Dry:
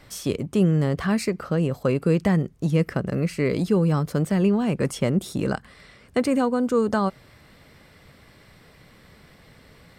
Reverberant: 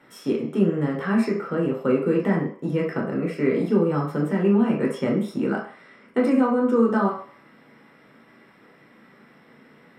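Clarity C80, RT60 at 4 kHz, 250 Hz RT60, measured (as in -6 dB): 10.5 dB, 0.55 s, 0.35 s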